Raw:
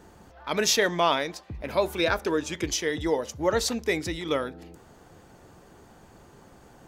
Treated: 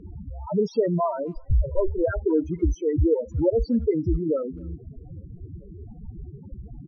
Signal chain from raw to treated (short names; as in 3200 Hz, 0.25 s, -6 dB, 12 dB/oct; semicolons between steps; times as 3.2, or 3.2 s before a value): 1.36–2.06 minimum comb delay 2.1 ms; in parallel at +2.5 dB: compressor 4:1, threshold -40 dBFS, peak gain reduction 18.5 dB; on the sum: high shelf 2300 Hz -5 dB; loudest bins only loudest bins 4; RIAA curve playback; speakerphone echo 0.26 s, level -29 dB